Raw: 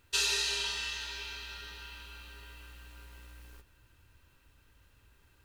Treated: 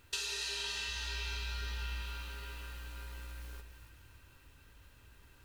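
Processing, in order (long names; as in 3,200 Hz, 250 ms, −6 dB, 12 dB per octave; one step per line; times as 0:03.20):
0:00.88–0:02.02: parametric band 75 Hz +10.5 dB 1.6 octaves
downward compressor 6 to 1, threshold −40 dBFS, peak gain reduction 13.5 dB
echo with a time of its own for lows and highs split 770 Hz, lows 118 ms, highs 283 ms, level −9 dB
level +3.5 dB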